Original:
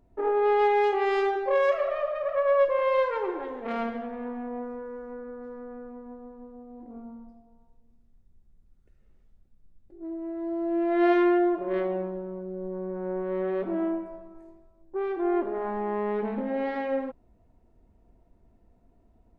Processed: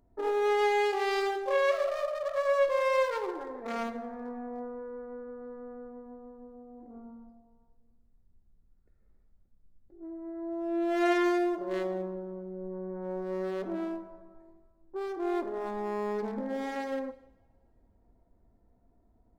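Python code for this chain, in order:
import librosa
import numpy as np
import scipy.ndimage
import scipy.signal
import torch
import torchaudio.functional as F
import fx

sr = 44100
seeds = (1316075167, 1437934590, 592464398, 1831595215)

y = fx.wiener(x, sr, points=15)
y = fx.high_shelf(y, sr, hz=2000.0, db=11.5)
y = fx.rev_double_slope(y, sr, seeds[0], early_s=0.79, late_s=2.8, knee_db=-25, drr_db=12.0)
y = y * 10.0 ** (-5.0 / 20.0)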